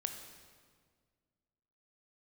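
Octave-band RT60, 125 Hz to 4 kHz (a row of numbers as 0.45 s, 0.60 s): 2.3 s, 2.2 s, 1.9 s, 1.7 s, 1.5 s, 1.4 s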